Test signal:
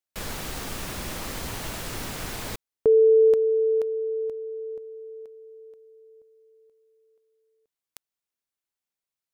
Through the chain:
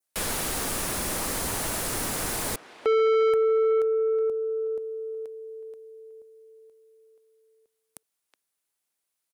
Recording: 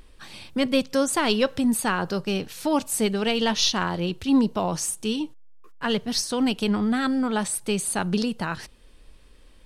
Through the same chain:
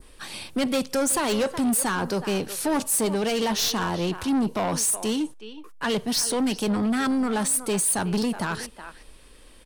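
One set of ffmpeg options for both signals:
-filter_complex "[0:a]acrossover=split=220[a][b];[b]acontrast=42[c];[a][c]amix=inputs=2:normalize=0,equalizer=f=10k:t=o:w=0.63:g=7.5,asplit=2[d][e];[e]adelay=370,highpass=300,lowpass=3.4k,asoftclip=type=hard:threshold=-11.5dB,volume=-16dB[f];[d][f]amix=inputs=2:normalize=0,asoftclip=type=tanh:threshold=-19.5dB,adynamicequalizer=threshold=0.00891:dfrequency=3000:dqfactor=1.1:tfrequency=3000:tqfactor=1.1:attack=5:release=100:ratio=0.375:range=2:mode=cutabove:tftype=bell"

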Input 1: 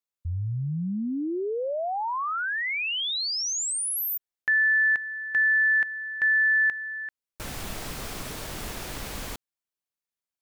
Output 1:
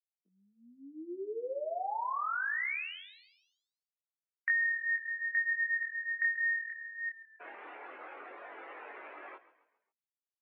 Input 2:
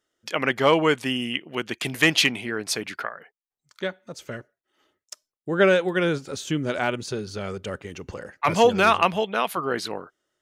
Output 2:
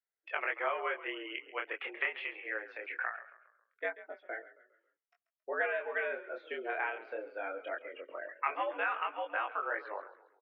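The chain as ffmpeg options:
-filter_complex "[0:a]afftdn=nr=19:nf=-37,tiltshelf=f=700:g=-7,acompressor=threshold=-31dB:ratio=4:attack=80:release=223:knee=6:detection=rms,flanger=delay=20:depth=7.2:speed=0.22,asplit=2[a][b];[b]asplit=4[c][d][e][f];[c]adelay=136,afreqshift=-37,volume=-16dB[g];[d]adelay=272,afreqshift=-74,volume=-23.3dB[h];[e]adelay=408,afreqshift=-111,volume=-30.7dB[i];[f]adelay=544,afreqshift=-148,volume=-38dB[j];[g][h][i][j]amix=inputs=4:normalize=0[k];[a][k]amix=inputs=2:normalize=0,highpass=f=250:t=q:w=0.5412,highpass=f=250:t=q:w=1.307,lowpass=f=2.3k:t=q:w=0.5176,lowpass=f=2.3k:t=q:w=0.7071,lowpass=f=2.3k:t=q:w=1.932,afreqshift=97,volume=-1dB"

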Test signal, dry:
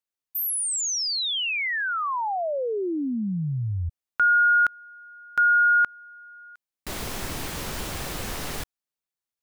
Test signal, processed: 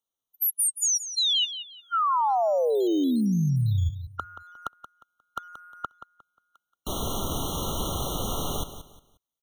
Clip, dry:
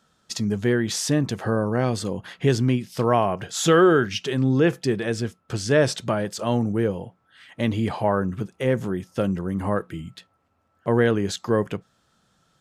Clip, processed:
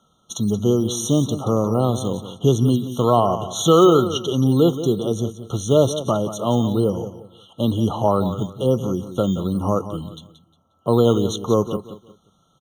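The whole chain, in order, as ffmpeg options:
-filter_complex "[0:a]aecho=1:1:178|356|534:0.251|0.0703|0.0197,acrossover=split=350[a][b];[a]acrusher=samples=10:mix=1:aa=0.000001:lfo=1:lforange=6:lforate=1.1[c];[c][b]amix=inputs=2:normalize=0,afftfilt=real='re*eq(mod(floor(b*sr/1024/1400),2),0)':imag='im*eq(mod(floor(b*sr/1024/1400),2),0)':win_size=1024:overlap=0.75,volume=3.5dB"

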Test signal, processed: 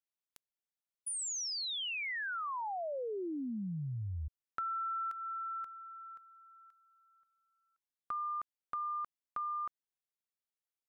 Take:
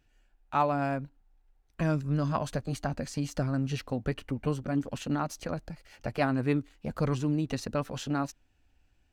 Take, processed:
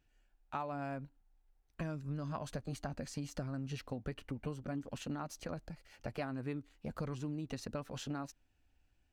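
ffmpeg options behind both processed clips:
-af "acompressor=threshold=-30dB:ratio=6,volume=-6dB"

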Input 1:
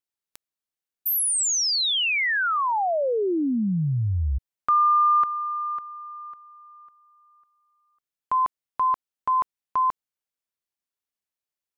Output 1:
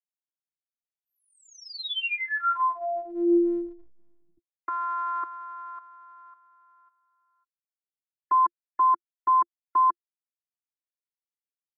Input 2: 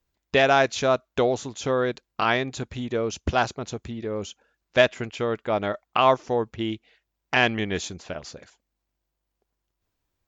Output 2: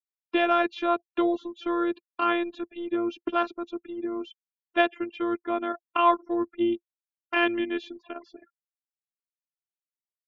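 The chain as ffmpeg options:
-af "afftfilt=real='re*gte(hypot(re,im),0.00891)':imag='im*gte(hypot(re,im),0.00891)':win_size=1024:overlap=0.75,highpass=f=210:w=0.5412,highpass=f=210:w=1.3066,equalizer=f=220:t=q:w=4:g=9,equalizer=f=340:t=q:w=4:g=5,equalizer=f=690:t=q:w=4:g=-5,equalizer=f=1.2k:t=q:w=4:g=6,equalizer=f=2k:t=q:w=4:g=-5,lowpass=f=3.3k:w=0.5412,lowpass=f=3.3k:w=1.3066,afftfilt=real='hypot(re,im)*cos(PI*b)':imag='0':win_size=512:overlap=0.75"

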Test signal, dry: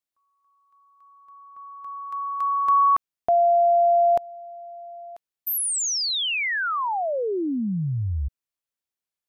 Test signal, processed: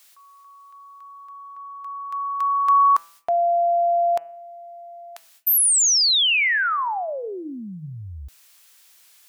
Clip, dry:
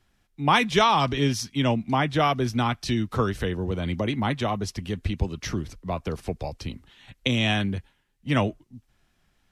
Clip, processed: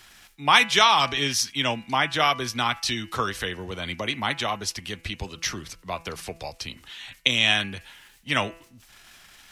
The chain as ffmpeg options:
-af "areverse,acompressor=mode=upward:threshold=-37dB:ratio=2.5:attack=2:release=52:knee=2.83:detection=peak,areverse,tiltshelf=f=730:g=-9,bandreject=f=166.1:t=h:w=4,bandreject=f=332.2:t=h:w=4,bandreject=f=498.3:t=h:w=4,bandreject=f=664.4:t=h:w=4,bandreject=f=830.5:t=h:w=4,bandreject=f=996.6:t=h:w=4,bandreject=f=1.1627k:t=h:w=4,bandreject=f=1.3288k:t=h:w=4,bandreject=f=1.4949k:t=h:w=4,bandreject=f=1.661k:t=h:w=4,bandreject=f=1.8271k:t=h:w=4,bandreject=f=1.9932k:t=h:w=4,bandreject=f=2.1593k:t=h:w=4,bandreject=f=2.3254k:t=h:w=4,bandreject=f=2.4915k:t=h:w=4,bandreject=f=2.6576k:t=h:w=4,bandreject=f=2.8237k:t=h:w=4,bandreject=f=2.9898k:t=h:w=4,volume=-1dB"

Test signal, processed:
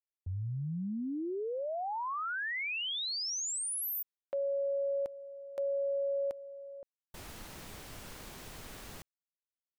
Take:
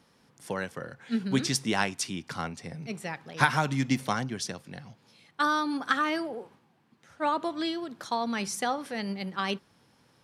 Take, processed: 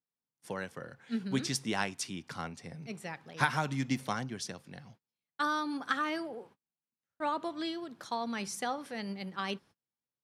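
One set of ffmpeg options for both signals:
-af "agate=range=-32dB:threshold=-50dB:ratio=16:detection=peak,volume=-5.5dB"

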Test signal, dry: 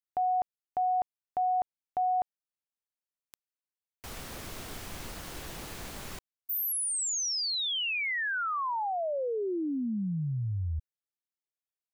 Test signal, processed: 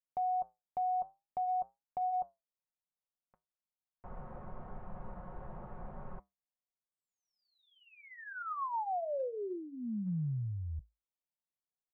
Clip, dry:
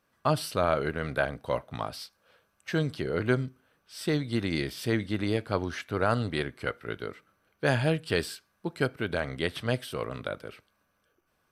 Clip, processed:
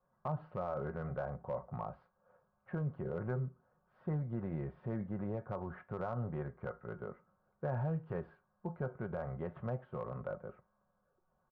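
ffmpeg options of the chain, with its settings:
-af "equalizer=f=320:w=2.4:g=-12.5,aecho=1:1:5.5:0.5,flanger=delay=7.3:depth=2.6:regen=-75:speed=0.49:shape=triangular,lowpass=f=1.1k:w=0.5412,lowpass=f=1.1k:w=1.3066,adynamicequalizer=threshold=0.00251:dfrequency=220:dqfactor=3.4:tfrequency=220:tqfactor=3.4:attack=5:release=100:ratio=0.375:range=3:mode=cutabove:tftype=bell,acompressor=threshold=-34dB:ratio=5:attack=0.2:release=81:knee=6:detection=rms,volume=3dB"

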